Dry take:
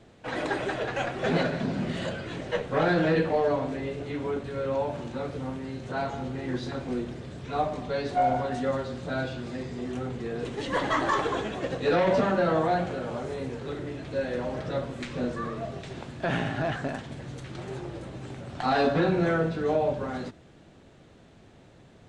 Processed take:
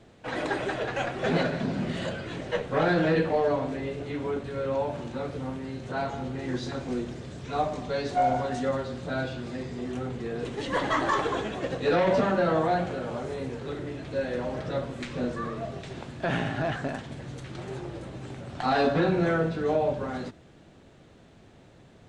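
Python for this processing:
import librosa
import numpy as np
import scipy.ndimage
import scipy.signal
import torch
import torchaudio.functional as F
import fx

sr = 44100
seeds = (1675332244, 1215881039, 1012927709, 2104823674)

y = fx.peak_eq(x, sr, hz=6500.0, db=5.0, octaves=0.97, at=(6.39, 8.69))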